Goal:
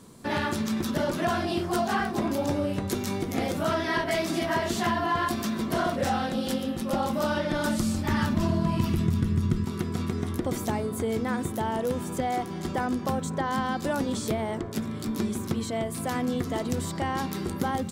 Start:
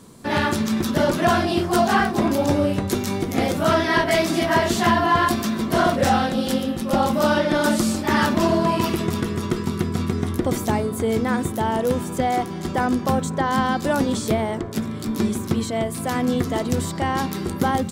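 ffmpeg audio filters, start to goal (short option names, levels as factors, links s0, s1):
-filter_complex "[0:a]asettb=1/sr,asplit=3[s0][s1][s2];[s0]atrim=end=7.114[s3];[s1]atrim=start=7.11:end=9.65,asetpts=PTS-STARTPTS,afade=t=in:d=0.004:c=qsin,afade=t=out:st=2.536:d=0.004:c=qsin,asubboost=boost=11.5:cutoff=180[s4];[s2]atrim=start=9.646[s5];[s3][s4]acrossfade=d=0.004:c1=hsin:c2=qsin[s6];[s6][s5]acrossfade=d=0.004:c1=qsin:c2=hsin,acompressor=threshold=0.0794:ratio=2,volume=0.631"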